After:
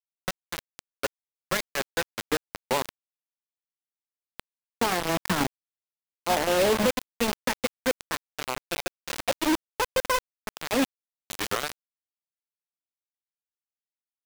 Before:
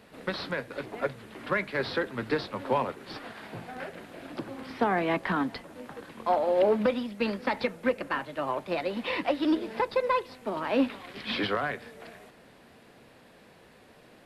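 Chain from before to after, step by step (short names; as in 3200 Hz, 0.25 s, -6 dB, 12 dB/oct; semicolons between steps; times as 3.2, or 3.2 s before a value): 5.09–7.65 low shelf 140 Hz +12 dB; bit-crush 4-bit; gain -1 dB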